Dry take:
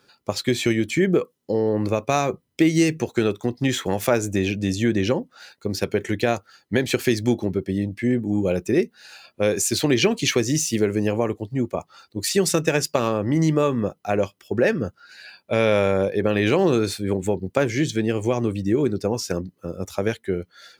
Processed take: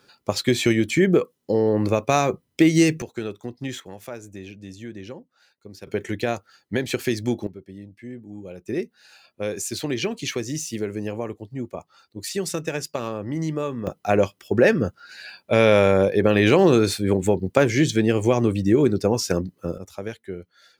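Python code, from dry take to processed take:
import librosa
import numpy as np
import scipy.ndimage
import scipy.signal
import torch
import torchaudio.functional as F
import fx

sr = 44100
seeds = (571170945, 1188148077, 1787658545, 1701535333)

y = fx.gain(x, sr, db=fx.steps((0.0, 1.5), (3.02, -9.0), (3.8, -16.0), (5.87, -3.5), (7.47, -16.0), (8.68, -7.0), (13.87, 3.0), (19.78, -8.5)))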